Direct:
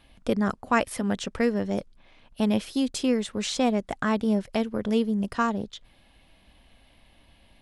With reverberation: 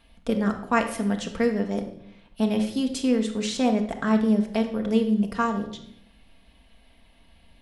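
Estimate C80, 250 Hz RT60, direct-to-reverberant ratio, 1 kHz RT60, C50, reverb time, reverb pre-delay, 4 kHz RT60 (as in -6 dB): 12.0 dB, 1.1 s, 3.5 dB, 0.65 s, 8.5 dB, 0.75 s, 4 ms, 0.60 s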